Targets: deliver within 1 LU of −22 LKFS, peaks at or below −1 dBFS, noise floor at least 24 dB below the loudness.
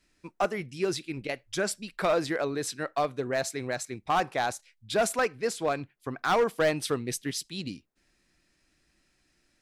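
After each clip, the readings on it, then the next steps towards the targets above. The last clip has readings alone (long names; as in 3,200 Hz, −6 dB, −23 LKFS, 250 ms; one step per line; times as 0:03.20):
share of clipped samples 0.8%; peaks flattened at −19.0 dBFS; integrated loudness −30.0 LKFS; sample peak −19.0 dBFS; target loudness −22.0 LKFS
→ clipped peaks rebuilt −19 dBFS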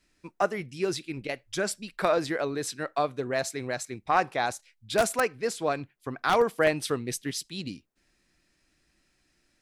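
share of clipped samples 0.0%; integrated loudness −29.0 LKFS; sample peak −10.0 dBFS; target loudness −22.0 LKFS
→ level +7 dB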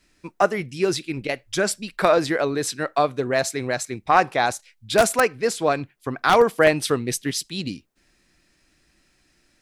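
integrated loudness −22.0 LKFS; sample peak −3.0 dBFS; background noise floor −65 dBFS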